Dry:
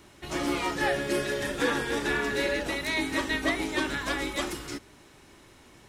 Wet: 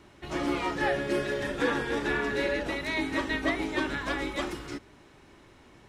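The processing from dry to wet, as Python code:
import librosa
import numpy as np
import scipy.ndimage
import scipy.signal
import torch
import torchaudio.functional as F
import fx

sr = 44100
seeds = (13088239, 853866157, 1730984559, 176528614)

y = fx.lowpass(x, sr, hz=2800.0, slope=6)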